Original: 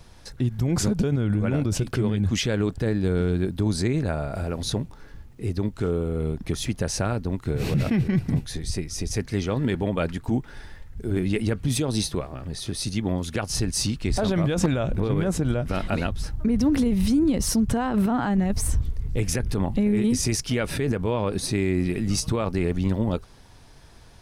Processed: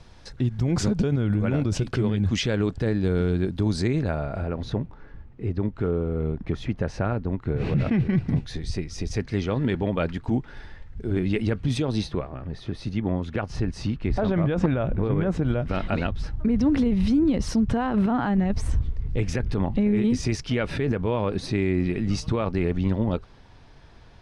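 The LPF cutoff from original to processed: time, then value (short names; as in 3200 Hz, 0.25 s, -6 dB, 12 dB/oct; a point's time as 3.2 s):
3.93 s 5800 Hz
4.54 s 2200 Hz
7.52 s 2200 Hz
8.43 s 4300 Hz
11.71 s 4300 Hz
12.41 s 2200 Hz
15.16 s 2200 Hz
15.64 s 3800 Hz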